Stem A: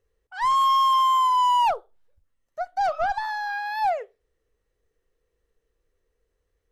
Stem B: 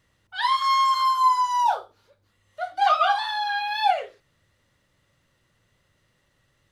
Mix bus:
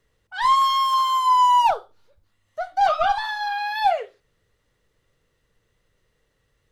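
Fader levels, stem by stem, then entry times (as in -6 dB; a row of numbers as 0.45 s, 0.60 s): +2.0 dB, -4.5 dB; 0.00 s, 0.00 s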